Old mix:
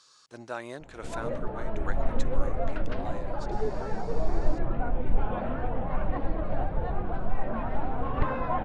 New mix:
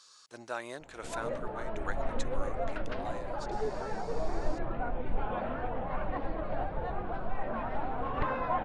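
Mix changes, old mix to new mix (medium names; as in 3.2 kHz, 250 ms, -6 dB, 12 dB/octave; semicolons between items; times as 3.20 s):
speech: add treble shelf 7.5 kHz +4.5 dB; master: add bass shelf 310 Hz -8.5 dB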